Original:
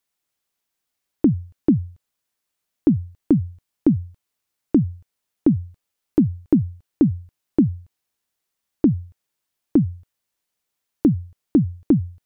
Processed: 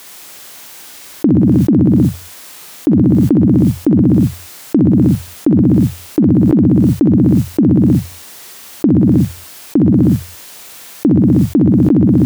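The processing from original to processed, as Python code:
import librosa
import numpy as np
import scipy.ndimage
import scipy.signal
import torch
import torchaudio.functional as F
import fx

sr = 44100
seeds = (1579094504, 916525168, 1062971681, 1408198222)

y = fx.highpass(x, sr, hz=160.0, slope=6)
y = fx.doubler(y, sr, ms=47.0, db=-13)
y = fx.echo_feedback(y, sr, ms=63, feedback_pct=44, wet_db=-5)
y = fx.env_flatten(y, sr, amount_pct=100)
y = F.gain(torch.from_numpy(y), 3.5).numpy()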